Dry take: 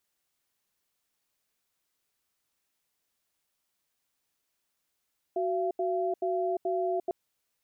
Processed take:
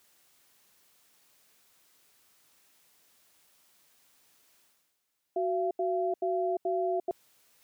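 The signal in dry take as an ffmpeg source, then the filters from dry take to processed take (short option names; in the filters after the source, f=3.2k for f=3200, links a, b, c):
-f lavfi -i "aevalsrc='0.0355*(sin(2*PI*372*t)+sin(2*PI*682*t))*clip(min(mod(t,0.43),0.35-mod(t,0.43))/0.005,0,1)':d=1.75:s=44100"
-af "lowshelf=f=66:g=-11.5,areverse,acompressor=mode=upward:threshold=-51dB:ratio=2.5,areverse"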